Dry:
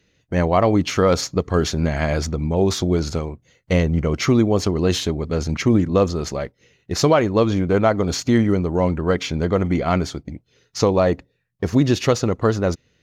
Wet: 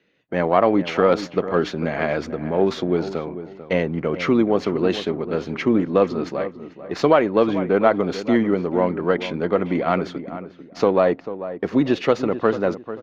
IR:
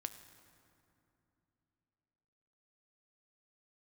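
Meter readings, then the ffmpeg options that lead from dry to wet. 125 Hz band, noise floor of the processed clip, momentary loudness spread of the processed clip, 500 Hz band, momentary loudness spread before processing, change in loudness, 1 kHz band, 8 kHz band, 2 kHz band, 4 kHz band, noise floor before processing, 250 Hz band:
-9.5 dB, -45 dBFS, 11 LU, +0.5 dB, 9 LU, -1.0 dB, +1.0 dB, under -15 dB, +0.5 dB, -6.0 dB, -66 dBFS, -1.5 dB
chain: -filter_complex "[0:a]aeval=exprs='if(lt(val(0),0),0.708*val(0),val(0))':c=same,acrossover=split=180 3600:gain=0.0631 1 0.0631[a][b][c];[a][b][c]amix=inputs=3:normalize=0,asplit=2[d][e];[e]adelay=443,lowpass=f=1.5k:p=1,volume=-12dB,asplit=2[f][g];[g]adelay=443,lowpass=f=1.5k:p=1,volume=0.29,asplit=2[h][i];[i]adelay=443,lowpass=f=1.5k:p=1,volume=0.29[j];[f][h][j]amix=inputs=3:normalize=0[k];[d][k]amix=inputs=2:normalize=0,volume=2dB"

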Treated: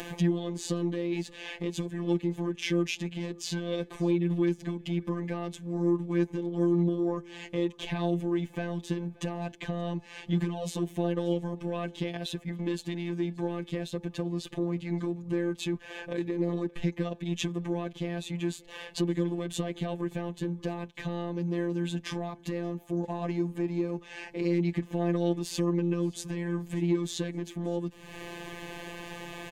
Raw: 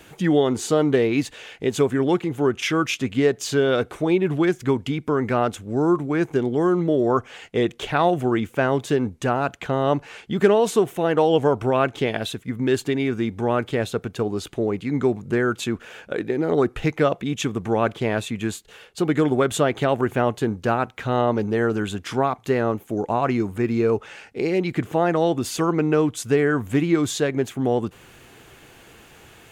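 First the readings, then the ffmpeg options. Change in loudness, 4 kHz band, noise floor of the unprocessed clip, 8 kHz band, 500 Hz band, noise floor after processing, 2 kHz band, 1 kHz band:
-9.5 dB, -7.5 dB, -49 dBFS, -9.0 dB, -12.5 dB, -52 dBFS, -12.5 dB, -16.5 dB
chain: -filter_complex "[0:a]highshelf=f=6k:g=-11.5,acrossover=split=350|3000[a][b][c];[b]acompressor=threshold=-42dB:ratio=2[d];[a][d][c]amix=inputs=3:normalize=0,alimiter=limit=-18dB:level=0:latency=1:release=388,acompressor=mode=upward:threshold=-30dB:ratio=2.5,asoftclip=type=tanh:threshold=-18dB,afftfilt=real='hypot(re,im)*cos(PI*b)':imag='0':win_size=1024:overlap=0.75,asuperstop=centerf=1400:order=8:qfactor=6.8,aecho=1:1:577|1154:0.0631|0.0227,volume=2.5dB"

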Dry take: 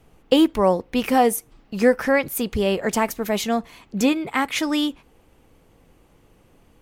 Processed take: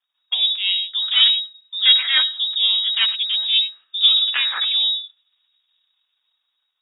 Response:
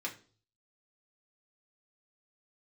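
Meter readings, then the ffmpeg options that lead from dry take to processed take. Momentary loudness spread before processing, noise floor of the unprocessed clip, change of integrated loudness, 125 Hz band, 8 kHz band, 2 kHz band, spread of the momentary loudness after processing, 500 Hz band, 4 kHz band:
8 LU, -57 dBFS, +5.0 dB, under -40 dB, under -40 dB, +1.0 dB, 7 LU, under -35 dB, +18.5 dB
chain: -filter_complex "[0:a]aeval=exprs='if(lt(val(0),0),0.251*val(0),val(0))':c=same,asplit=2[a][b];[1:a]atrim=start_sample=2205,adelay=94[c];[b][c]afir=irnorm=-1:irlink=0,volume=-12dB[d];[a][d]amix=inputs=2:normalize=0,volume=9.5dB,asoftclip=hard,volume=-9.5dB,afwtdn=0.0316,flanger=delay=4.2:depth=8.8:regen=35:speed=0.63:shape=triangular,lowpass=f=3.2k:t=q:w=0.5098,lowpass=f=3.2k:t=q:w=0.6013,lowpass=f=3.2k:t=q:w=0.9,lowpass=f=3.2k:t=q:w=2.563,afreqshift=-3800,acrossover=split=130|2200[e][f][g];[f]equalizer=f=1.4k:w=0.6:g=9[h];[g]dynaudnorm=f=120:g=13:m=11dB[i];[e][h][i]amix=inputs=3:normalize=0"

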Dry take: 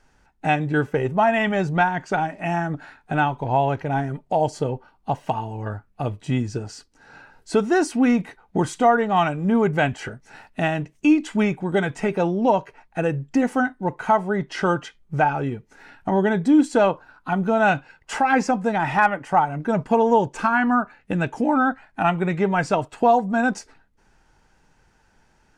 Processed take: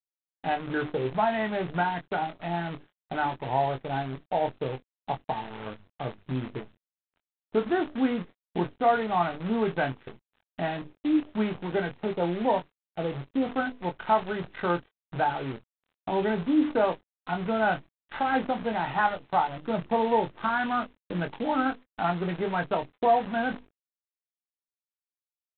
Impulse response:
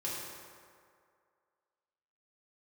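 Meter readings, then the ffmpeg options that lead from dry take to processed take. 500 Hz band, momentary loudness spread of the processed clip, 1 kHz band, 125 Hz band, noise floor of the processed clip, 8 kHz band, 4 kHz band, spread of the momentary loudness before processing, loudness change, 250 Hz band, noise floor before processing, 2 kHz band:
-6.5 dB, 11 LU, -6.0 dB, -9.5 dB, under -85 dBFS, under -40 dB, -4.0 dB, 11 LU, -7.0 dB, -8.0 dB, -61 dBFS, -8.0 dB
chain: -filter_complex "[0:a]bandreject=f=50:t=h:w=6,bandreject=f=100:t=h:w=6,bandreject=f=150:t=h:w=6,bandreject=f=200:t=h:w=6,bandreject=f=250:t=h:w=6,bandreject=f=300:t=h:w=6,acrossover=split=430|2100[a][b][c];[c]acompressor=threshold=-45dB:ratio=10[d];[a][b][d]amix=inputs=3:normalize=0,highpass=f=160:p=1,afwtdn=0.0251,aresample=11025,acrusher=bits=6:dc=4:mix=0:aa=0.000001,aresample=44100,asplit=2[e][f];[f]adelay=23,volume=-7.5dB[g];[e][g]amix=inputs=2:normalize=0,volume=-6.5dB" -ar 8000 -c:a adpcm_g726 -b:a 24k

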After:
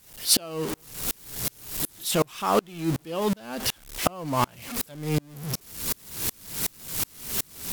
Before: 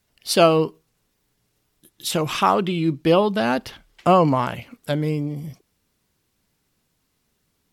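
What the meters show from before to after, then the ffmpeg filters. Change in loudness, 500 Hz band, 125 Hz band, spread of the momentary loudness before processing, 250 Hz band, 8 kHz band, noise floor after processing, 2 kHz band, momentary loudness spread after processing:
-7.0 dB, -9.5 dB, -6.0 dB, 13 LU, -7.5 dB, +7.5 dB, -55 dBFS, -6.0 dB, 8 LU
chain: -af "aeval=exprs='val(0)+0.5*0.0668*sgn(val(0))':c=same,aemphasis=mode=production:type=cd,aeval=exprs='val(0)*pow(10,-35*if(lt(mod(-2.7*n/s,1),2*abs(-2.7)/1000),1-mod(-2.7*n/s,1)/(2*abs(-2.7)/1000),(mod(-2.7*n/s,1)-2*abs(-2.7)/1000)/(1-2*abs(-2.7)/1000))/20)':c=same,volume=1dB"

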